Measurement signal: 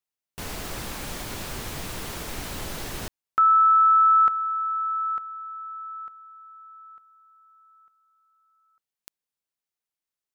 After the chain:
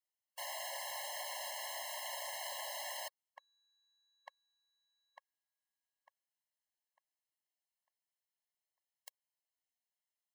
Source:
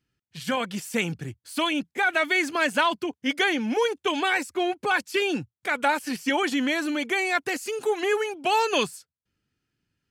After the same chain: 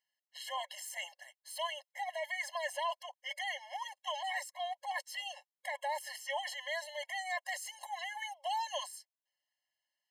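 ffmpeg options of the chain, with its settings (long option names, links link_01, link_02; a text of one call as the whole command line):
ffmpeg -i in.wav -af "areverse,acompressor=threshold=-28dB:ratio=10:attack=3.6:release=27:knee=6:detection=peak,areverse,afftfilt=real='re*eq(mod(floor(b*sr/1024/550),2),1)':imag='im*eq(mod(floor(b*sr/1024/550),2),1)':win_size=1024:overlap=0.75,volume=-3dB" out.wav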